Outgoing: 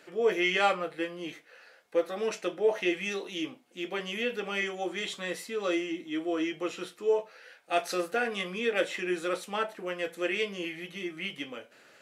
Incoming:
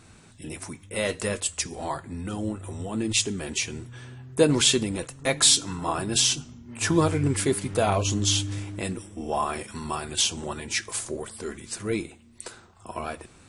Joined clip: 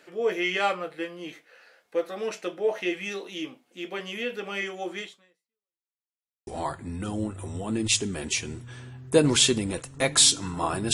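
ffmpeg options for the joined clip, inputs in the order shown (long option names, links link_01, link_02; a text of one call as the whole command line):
ffmpeg -i cue0.wav -i cue1.wav -filter_complex "[0:a]apad=whole_dur=10.93,atrim=end=10.93,asplit=2[link_01][link_02];[link_01]atrim=end=5.93,asetpts=PTS-STARTPTS,afade=type=out:start_time=5:duration=0.93:curve=exp[link_03];[link_02]atrim=start=5.93:end=6.47,asetpts=PTS-STARTPTS,volume=0[link_04];[1:a]atrim=start=1.72:end=6.18,asetpts=PTS-STARTPTS,afade=type=in:duration=0.004:curve=hsin[link_05];[link_03][link_04][link_05]concat=n=3:v=0:a=1" out.wav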